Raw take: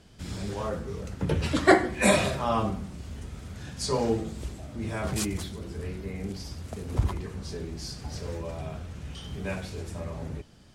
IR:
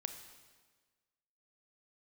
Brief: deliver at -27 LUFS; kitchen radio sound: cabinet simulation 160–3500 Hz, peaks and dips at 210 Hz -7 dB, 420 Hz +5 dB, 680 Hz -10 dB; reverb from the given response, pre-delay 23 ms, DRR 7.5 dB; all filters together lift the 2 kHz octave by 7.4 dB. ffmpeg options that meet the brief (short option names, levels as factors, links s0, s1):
-filter_complex "[0:a]equalizer=f=2000:t=o:g=9,asplit=2[s0][s1];[1:a]atrim=start_sample=2205,adelay=23[s2];[s1][s2]afir=irnorm=-1:irlink=0,volume=0.501[s3];[s0][s3]amix=inputs=2:normalize=0,highpass=160,equalizer=f=210:t=q:w=4:g=-7,equalizer=f=420:t=q:w=4:g=5,equalizer=f=680:t=q:w=4:g=-10,lowpass=f=3500:w=0.5412,lowpass=f=3500:w=1.3066,volume=0.944"